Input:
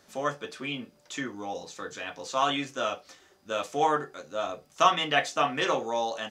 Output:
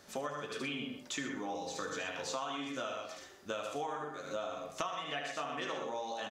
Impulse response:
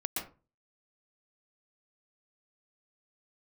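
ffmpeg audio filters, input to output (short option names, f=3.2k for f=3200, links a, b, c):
-filter_complex "[0:a]aecho=1:1:75|122:0.562|0.422,asplit=2[a][b];[1:a]atrim=start_sample=2205,afade=t=out:st=0.19:d=0.01,atrim=end_sample=8820[c];[b][c]afir=irnorm=-1:irlink=0,volume=-13.5dB[d];[a][d]amix=inputs=2:normalize=0,acompressor=threshold=-35dB:ratio=16"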